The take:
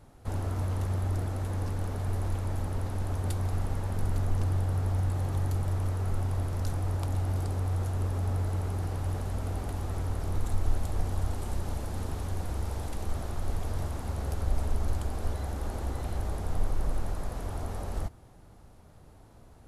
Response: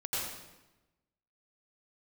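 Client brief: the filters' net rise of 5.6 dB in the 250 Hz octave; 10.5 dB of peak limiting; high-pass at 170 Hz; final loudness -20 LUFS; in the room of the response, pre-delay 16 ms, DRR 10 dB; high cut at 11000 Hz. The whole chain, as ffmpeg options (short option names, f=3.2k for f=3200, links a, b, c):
-filter_complex "[0:a]highpass=170,lowpass=11k,equalizer=f=250:t=o:g=8.5,alimiter=level_in=9.5dB:limit=-24dB:level=0:latency=1,volume=-9.5dB,asplit=2[a][b];[1:a]atrim=start_sample=2205,adelay=16[c];[b][c]afir=irnorm=-1:irlink=0,volume=-15dB[d];[a][d]amix=inputs=2:normalize=0,volume=22dB"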